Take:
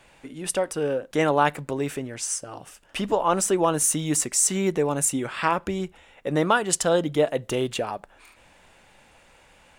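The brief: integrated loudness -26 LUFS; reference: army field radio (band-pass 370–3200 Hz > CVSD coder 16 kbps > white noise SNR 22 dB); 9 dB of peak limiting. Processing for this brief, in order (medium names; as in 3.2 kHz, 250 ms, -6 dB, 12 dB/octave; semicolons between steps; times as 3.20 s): peak limiter -15 dBFS; band-pass 370–3200 Hz; CVSD coder 16 kbps; white noise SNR 22 dB; trim +5 dB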